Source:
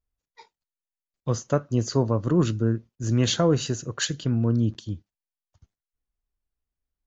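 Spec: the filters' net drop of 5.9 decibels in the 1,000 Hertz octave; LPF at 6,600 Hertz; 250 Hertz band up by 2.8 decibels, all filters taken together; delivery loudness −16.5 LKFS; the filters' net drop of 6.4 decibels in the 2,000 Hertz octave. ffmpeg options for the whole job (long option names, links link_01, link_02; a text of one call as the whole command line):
ffmpeg -i in.wav -af "lowpass=6600,equalizer=frequency=250:width_type=o:gain=4,equalizer=frequency=1000:width_type=o:gain=-6.5,equalizer=frequency=2000:width_type=o:gain=-6.5,volume=7dB" out.wav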